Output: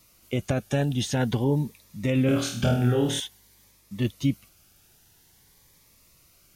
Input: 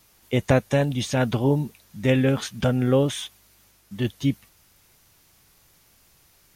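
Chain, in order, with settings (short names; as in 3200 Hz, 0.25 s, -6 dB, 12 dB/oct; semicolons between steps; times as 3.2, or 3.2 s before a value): limiter -14 dBFS, peak gain reduction 8 dB; 2.26–3.2 flutter echo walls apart 4.3 m, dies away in 0.5 s; cascading phaser rising 0.49 Hz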